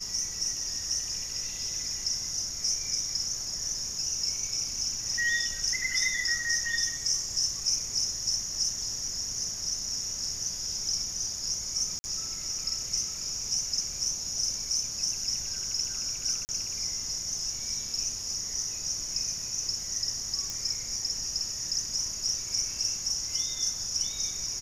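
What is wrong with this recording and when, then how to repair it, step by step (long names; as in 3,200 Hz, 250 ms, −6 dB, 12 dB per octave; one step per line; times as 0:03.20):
0:11.99–0:12.04: drop-out 50 ms
0:16.45–0:16.49: drop-out 39 ms
0:20.50: click −19 dBFS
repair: click removal
repair the gap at 0:11.99, 50 ms
repair the gap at 0:16.45, 39 ms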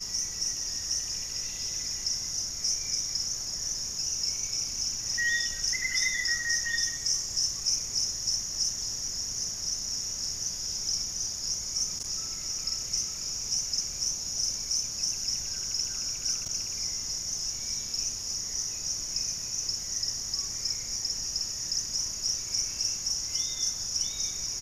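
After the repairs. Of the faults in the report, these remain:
none of them is left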